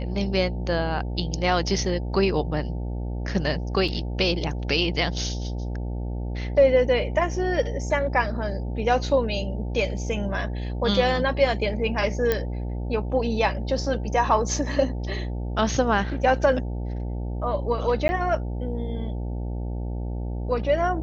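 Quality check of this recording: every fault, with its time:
buzz 60 Hz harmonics 15 -29 dBFS
3.88 gap 4.3 ms
12.32 pop -9 dBFS
18.08–18.09 gap 10 ms

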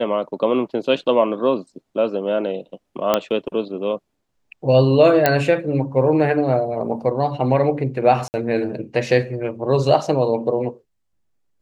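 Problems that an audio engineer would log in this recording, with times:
3.14 pop -3 dBFS
5.26 pop -1 dBFS
8.28–8.34 gap 59 ms

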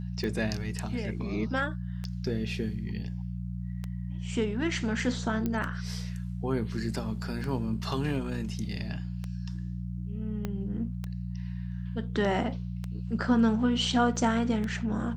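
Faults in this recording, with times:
hum 60 Hz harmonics 3 -35 dBFS
tick 33 1/3 rpm -22 dBFS
5.46 pop -18 dBFS
10.45 pop -19 dBFS
14.16 gap 2.8 ms

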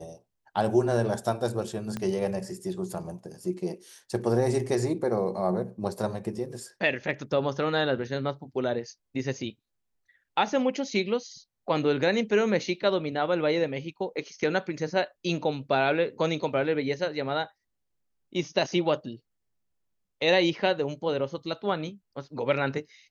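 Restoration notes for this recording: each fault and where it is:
1.97 pop -19 dBFS

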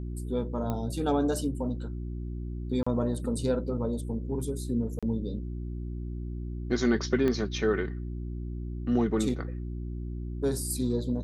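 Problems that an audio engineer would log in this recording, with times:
hum 60 Hz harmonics 6 -35 dBFS
0.7 pop -19 dBFS
2.83–2.87 gap 35 ms
4.99–5.03 gap 36 ms
7.28 pop -17 dBFS

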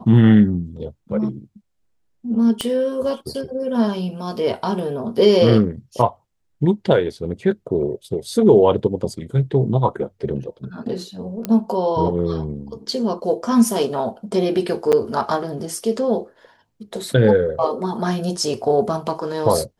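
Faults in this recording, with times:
2.61 pop -9 dBFS
11.45 pop -9 dBFS
14.92–14.93 gap 7.9 ms

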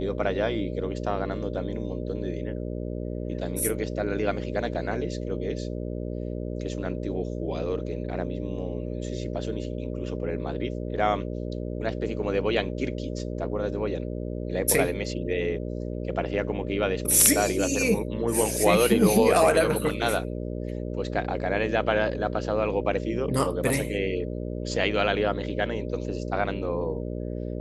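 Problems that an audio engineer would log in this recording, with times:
buzz 60 Hz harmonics 10 -32 dBFS

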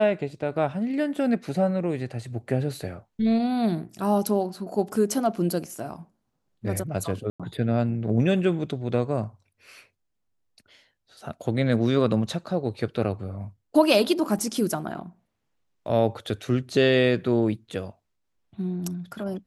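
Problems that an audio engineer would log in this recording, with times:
7.3–7.4 gap 96 ms
14.39 gap 2.7 ms

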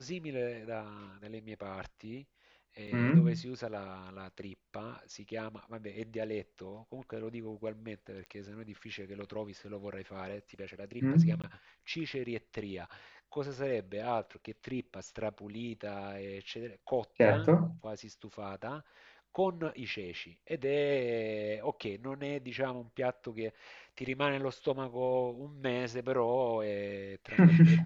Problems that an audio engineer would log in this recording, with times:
2.87–2.88 gap 5.5 ms
8.26 pop -33 dBFS
11.42–11.44 gap 17 ms

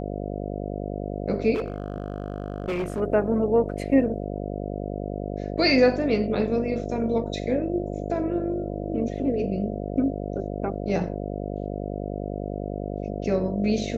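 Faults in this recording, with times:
buzz 50 Hz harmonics 14 -31 dBFS
1.54–3.01 clipped -23.5 dBFS

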